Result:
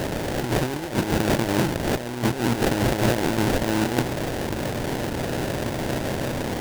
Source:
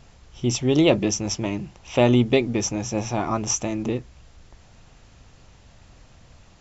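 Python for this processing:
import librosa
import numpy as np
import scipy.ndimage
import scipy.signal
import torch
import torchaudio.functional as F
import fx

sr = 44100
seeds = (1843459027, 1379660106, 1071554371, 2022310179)

y = fx.bin_compress(x, sr, power=0.4)
y = fx.dynamic_eq(y, sr, hz=1300.0, q=0.71, threshold_db=-31.0, ratio=4.0, max_db=-4)
y = fx.over_compress(y, sr, threshold_db=-20.0, ratio=-0.5)
y = fx.sample_hold(y, sr, seeds[0], rate_hz=1200.0, jitter_pct=20)
y = y * 10.0 ** (-1.5 / 20.0)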